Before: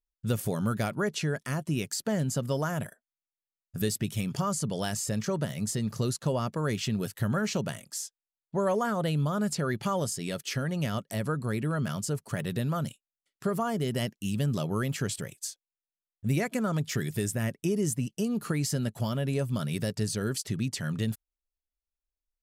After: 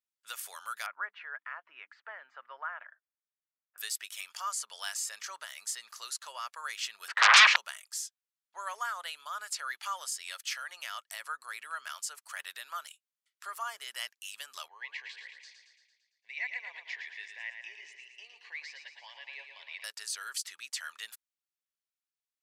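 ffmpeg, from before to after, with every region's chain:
ffmpeg -i in.wav -filter_complex "[0:a]asettb=1/sr,asplit=3[link_01][link_02][link_03];[link_01]atrim=end=0.864[link_04];[link_02]atrim=start=0.86:end=3.78,asetpts=PTS-STARTPTS,afade=type=in:duration=0.004:curve=qsin,afade=type=out:start_time=2.916:duration=0.004:curve=qsin,lowpass=frequency=2000:width=0.5412,lowpass=frequency=2000:width=1.3066,bandreject=frequency=50:width_type=h:width=6,bandreject=frequency=100:width_type=h:width=6,bandreject=frequency=150:width_type=h:width=6,bandreject=frequency=200:width_type=h:width=6,bandreject=frequency=250:width_type=h:width=6,bandreject=frequency=300:width_type=h:width=6[link_05];[link_03]atrim=start=3.776[link_06];[link_04][link_05]acrossfade=duration=0.004:curve1=hsin:curve2=qsin[link_07];[link_07][link_06]acrossfade=duration=0.004:curve1=qsin:curve2=hsin,asettb=1/sr,asplit=3[link_08][link_09][link_10];[link_08]atrim=end=7.084[link_11];[link_09]atrim=start=7.08:end=7.56,asetpts=PTS-STARTPTS,afade=type=in:duration=0.004:curve=qsin,afade=type=out:start_time=0.476:duration=0.004:curve=qsin,lowpass=1100,aeval=exprs='0.119*sin(PI/2*10*val(0)/0.119)':channel_layout=same,acontrast=86[link_12];[link_10]atrim=start=7.556[link_13];[link_11][link_12]acrossfade=duration=0.004:curve1=hsin:curve2=qsin[link_14];[link_14][link_13]acrossfade=duration=0.004:curve1=qsin:curve2=hsin,asettb=1/sr,asplit=3[link_15][link_16][link_17];[link_15]atrim=end=14.684[link_18];[link_16]atrim=start=14.68:end=19.84,asetpts=PTS-STARTPTS,afade=type=in:duration=0.004:curve=qsin,afade=type=out:start_time=5.156:duration=0.004:curve=qsin,asuperstop=centerf=1300:order=4:qfactor=1.2,highpass=490,equalizer=frequency=620:width_type=q:width=4:gain=-7,equalizer=frequency=1200:width_type=q:width=4:gain=7,equalizer=frequency=2000:width_type=q:width=4:gain=7,equalizer=frequency=3200:width_type=q:width=4:gain=-6,lowpass=frequency=3600:width=0.5412,lowpass=frequency=3600:width=1.3066,aecho=1:1:113|226|339|452|565|678|791|904:0.447|0.268|0.161|0.0965|0.0579|0.0347|0.0208|0.0125,atrim=end_sample=227556[link_19];[link_17]atrim=start=19.836[link_20];[link_18][link_19]acrossfade=duration=0.004:curve1=hsin:curve2=qsin[link_21];[link_21][link_20]acrossfade=duration=0.004:curve1=qsin:curve2=hsin,highpass=frequency=1100:width=0.5412,highpass=frequency=1100:width=1.3066,highshelf=frequency=11000:gain=-4.5" out.wav

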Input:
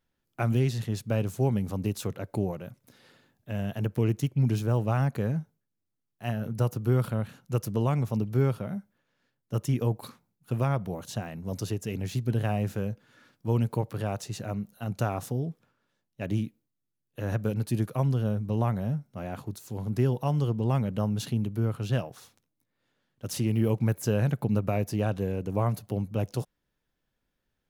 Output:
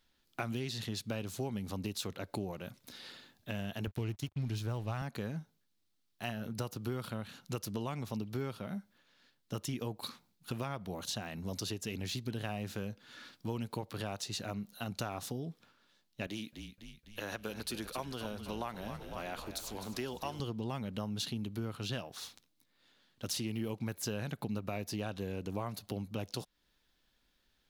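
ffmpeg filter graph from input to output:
ffmpeg -i in.wav -filter_complex "[0:a]asettb=1/sr,asplit=3[link_01][link_02][link_03];[link_01]atrim=end=3.874[link_04];[link_02]atrim=start=3.87:end=5.02,asetpts=PTS-STARTPTS,afade=type=in:duration=0.004:curve=qsin,afade=type=out:start_time=1.146:duration=0.004:curve=qsin,aeval=exprs='sgn(val(0))*max(abs(val(0))-0.00422,0)':channel_layout=same,lowshelf=frequency=140:width_type=q:width=1.5:gain=6.5[link_05];[link_03]atrim=start=5.016[link_06];[link_04][link_05]acrossfade=duration=0.004:curve1=hsin:curve2=qsin[link_07];[link_07][link_06]acrossfade=duration=0.004:curve1=qsin:curve2=hsin,asettb=1/sr,asplit=3[link_08][link_09][link_10];[link_08]atrim=end=16.274[link_11];[link_09]atrim=start=16.27:end=20.4,asetpts=PTS-STARTPTS,afade=type=in:duration=0.004:curve=qsin,afade=type=out:start_time=4.126:duration=0.004:curve=qsin,highpass=frequency=540:poles=1,asplit=8[link_12][link_13][link_14][link_15][link_16][link_17][link_18][link_19];[link_13]adelay=253,afreqshift=-39,volume=-12dB[link_20];[link_14]adelay=506,afreqshift=-78,volume=-16.2dB[link_21];[link_15]adelay=759,afreqshift=-117,volume=-20.3dB[link_22];[link_16]adelay=1012,afreqshift=-156,volume=-24.5dB[link_23];[link_17]adelay=1265,afreqshift=-195,volume=-28.6dB[link_24];[link_18]adelay=1518,afreqshift=-234,volume=-32.8dB[link_25];[link_19]adelay=1771,afreqshift=-273,volume=-36.9dB[link_26];[link_12][link_20][link_21][link_22][link_23][link_24][link_25][link_26]amix=inputs=8:normalize=0,atrim=end_sample=182133[link_27];[link_10]atrim=start=20.396[link_28];[link_11][link_27]acrossfade=duration=0.004:curve1=hsin:curve2=qsin[link_29];[link_29][link_28]acrossfade=duration=0.004:curve1=qsin:curve2=hsin,equalizer=frequency=125:width_type=o:width=1:gain=-9,equalizer=frequency=500:width_type=o:width=1:gain=-4,equalizer=frequency=4000:width_type=o:width=1:gain=9,acompressor=threshold=-43dB:ratio=3,volume=5dB" out.wav

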